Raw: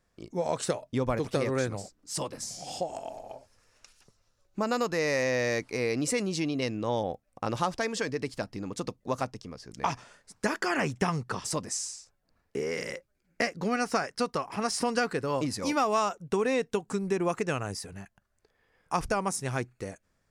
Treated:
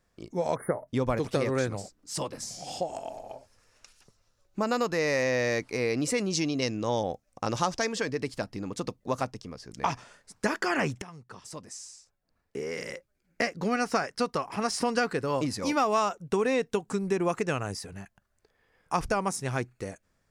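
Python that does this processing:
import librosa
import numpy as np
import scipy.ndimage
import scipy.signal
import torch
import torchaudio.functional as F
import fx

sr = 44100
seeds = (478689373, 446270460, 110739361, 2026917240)

y = fx.spec_erase(x, sr, start_s=0.55, length_s=0.33, low_hz=2200.0, high_hz=9200.0)
y = fx.peak_eq(y, sr, hz=6100.0, db=9.0, octaves=0.75, at=(6.3, 7.89))
y = fx.edit(y, sr, fx.fade_in_from(start_s=11.02, length_s=2.6, floor_db=-20.5), tone=tone)
y = fx.dynamic_eq(y, sr, hz=9700.0, q=0.9, threshold_db=-46.0, ratio=4.0, max_db=-3)
y = F.gain(torch.from_numpy(y), 1.0).numpy()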